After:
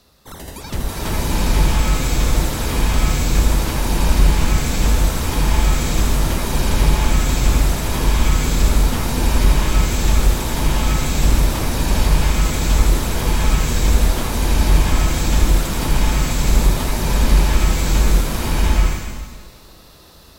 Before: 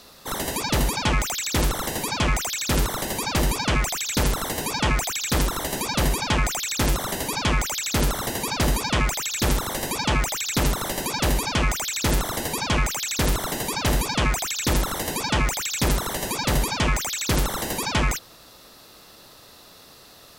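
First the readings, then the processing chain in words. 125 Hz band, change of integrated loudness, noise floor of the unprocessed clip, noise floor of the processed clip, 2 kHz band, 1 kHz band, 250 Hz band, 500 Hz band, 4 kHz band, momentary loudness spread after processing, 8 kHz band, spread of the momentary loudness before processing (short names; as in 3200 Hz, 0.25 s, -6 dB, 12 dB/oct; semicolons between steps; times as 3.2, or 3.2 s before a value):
+9.0 dB, +5.5 dB, -49 dBFS, -43 dBFS, +1.0 dB, +2.0 dB, +5.0 dB, +3.0 dB, +1.0 dB, 4 LU, +1.0 dB, 3 LU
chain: octaver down 2 oct, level -1 dB; low shelf 250 Hz +7.5 dB; bloom reverb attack 0.8 s, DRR -9.5 dB; gain -9 dB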